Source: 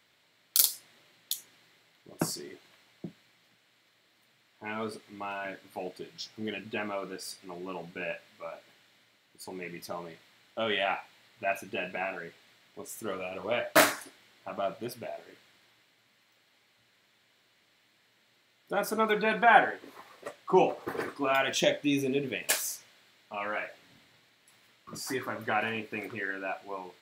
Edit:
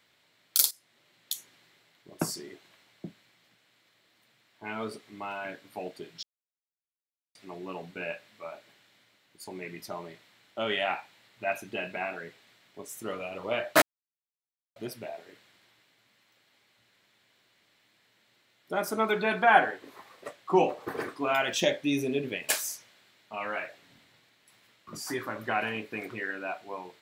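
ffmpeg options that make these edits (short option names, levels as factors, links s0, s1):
-filter_complex "[0:a]asplit=6[s0][s1][s2][s3][s4][s5];[s0]atrim=end=0.71,asetpts=PTS-STARTPTS,afade=t=out:st=0.706:d=0.004:c=hsin:silence=0.188365[s6];[s1]atrim=start=0.71:end=6.23,asetpts=PTS-STARTPTS,afade=t=in:d=0.64:silence=0.188365,afade=t=out:st=5.516:d=0.004:c=hsin[s7];[s2]atrim=start=6.23:end=7.35,asetpts=PTS-STARTPTS,volume=0[s8];[s3]atrim=start=7.35:end=13.82,asetpts=PTS-STARTPTS,afade=t=in:d=0.004:c=hsin,afade=t=out:st=6.466:d=0.004:c=hsin[s9];[s4]atrim=start=13.82:end=14.76,asetpts=PTS-STARTPTS,volume=0[s10];[s5]atrim=start=14.76,asetpts=PTS-STARTPTS,afade=t=in:d=0.004:c=hsin[s11];[s6][s7][s8][s9][s10][s11]concat=n=6:v=0:a=1"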